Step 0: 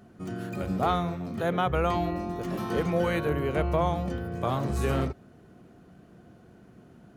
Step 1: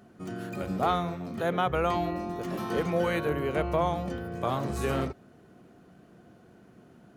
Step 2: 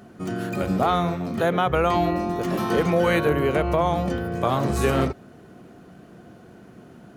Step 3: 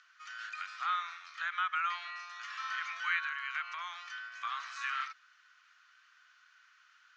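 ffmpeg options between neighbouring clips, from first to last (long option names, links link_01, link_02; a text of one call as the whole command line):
ffmpeg -i in.wav -af "lowshelf=frequency=120:gain=-8.5" out.wav
ffmpeg -i in.wav -af "alimiter=limit=-19dB:level=0:latency=1:release=107,volume=8.5dB" out.wav
ffmpeg -i in.wav -filter_complex "[0:a]asuperpass=centerf=2900:order=12:qfactor=0.55,acrossover=split=2700[link_01][link_02];[link_02]acompressor=threshold=-46dB:ratio=4:attack=1:release=60[link_03];[link_01][link_03]amix=inputs=2:normalize=0,volume=-3.5dB" out.wav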